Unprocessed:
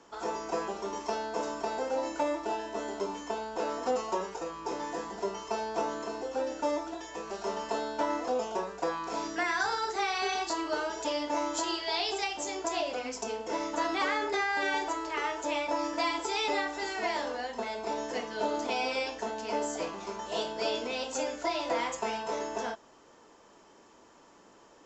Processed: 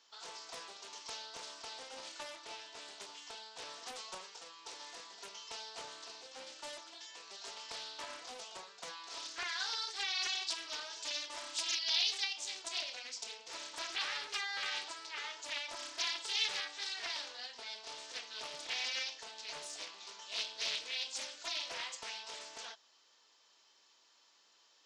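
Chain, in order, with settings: band-pass filter 4.2 kHz, Q 2.5; loudspeaker Doppler distortion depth 0.37 ms; trim +4.5 dB

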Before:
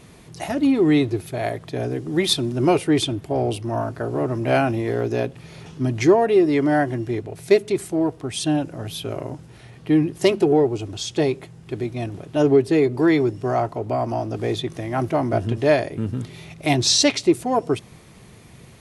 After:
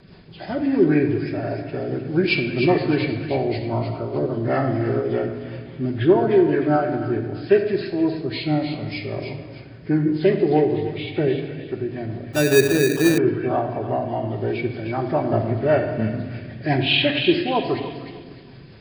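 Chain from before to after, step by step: knee-point frequency compression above 1 kHz 1.5:1; rotary cabinet horn 5 Hz; feedback echo behind a high-pass 306 ms, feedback 32%, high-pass 1.6 kHz, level -6.5 dB; simulated room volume 1700 m³, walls mixed, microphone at 1.1 m; 12.33–13.18 s: sample-rate reducer 2.1 kHz, jitter 0%

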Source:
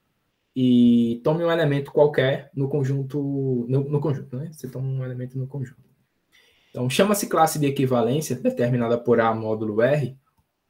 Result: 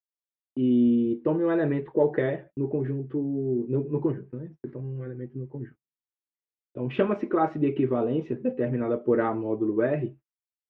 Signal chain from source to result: low-pass 2.5 kHz 24 dB/octave; gate -39 dBFS, range -43 dB; peaking EQ 330 Hz +12.5 dB 0.48 oct; trim -8 dB

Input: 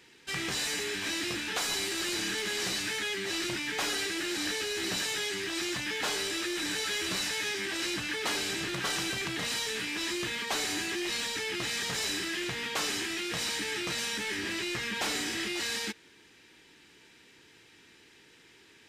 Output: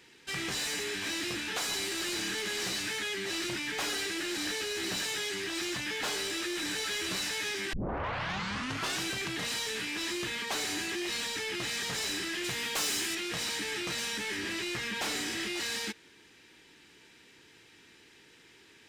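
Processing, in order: 7.73 s: tape start 1.29 s; 12.44–13.15 s: treble shelf 5.3 kHz +11 dB; saturation -27 dBFS, distortion -19 dB

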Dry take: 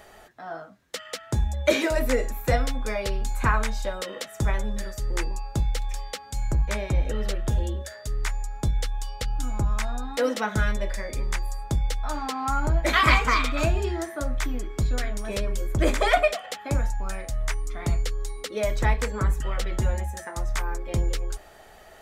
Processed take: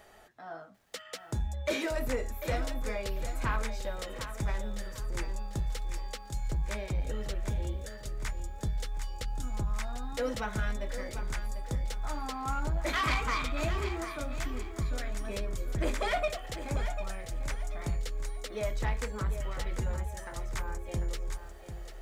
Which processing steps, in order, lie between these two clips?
saturation -16.5 dBFS, distortion -16 dB; bit-crushed delay 745 ms, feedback 35%, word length 9-bit, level -10 dB; trim -7 dB

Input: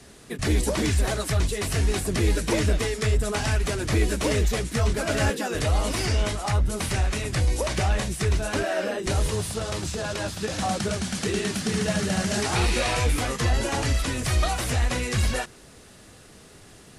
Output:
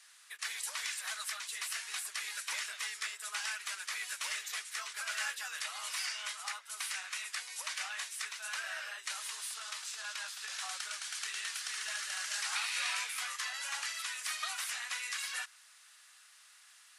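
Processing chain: high-pass 1.2 kHz 24 dB/octave; trim -6.5 dB

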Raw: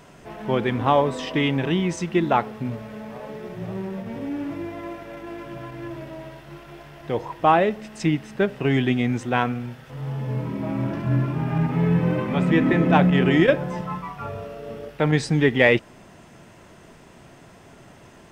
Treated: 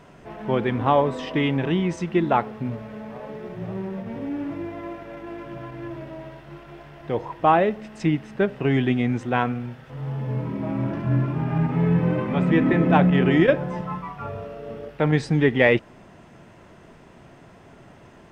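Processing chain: treble shelf 4.5 kHz -11 dB

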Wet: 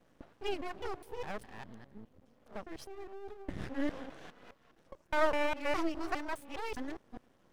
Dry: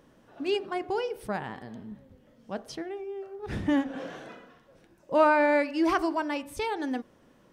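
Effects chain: time reversed locally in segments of 205 ms; half-wave rectifier; trim -4 dB

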